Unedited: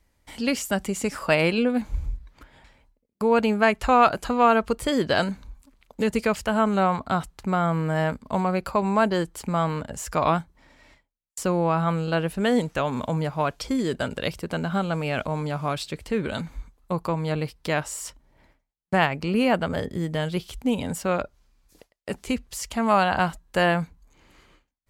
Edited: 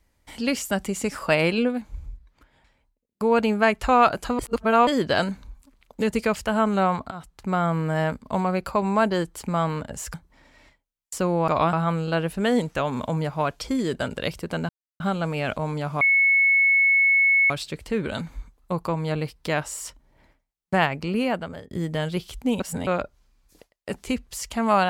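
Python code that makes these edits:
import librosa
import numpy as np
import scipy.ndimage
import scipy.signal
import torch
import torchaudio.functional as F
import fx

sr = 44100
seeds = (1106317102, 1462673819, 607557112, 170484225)

y = fx.edit(x, sr, fx.fade_down_up(start_s=1.66, length_s=1.57, db=-8.0, fade_s=0.16),
    fx.reverse_span(start_s=4.39, length_s=0.48),
    fx.fade_in_from(start_s=7.11, length_s=0.44, floor_db=-18.0),
    fx.move(start_s=10.14, length_s=0.25, to_s=11.73),
    fx.insert_silence(at_s=14.69, length_s=0.31),
    fx.insert_tone(at_s=15.7, length_s=1.49, hz=2200.0, db=-15.0),
    fx.fade_out_to(start_s=18.94, length_s=0.97, curve='qsin', floor_db=-22.0),
    fx.reverse_span(start_s=20.8, length_s=0.27), tone=tone)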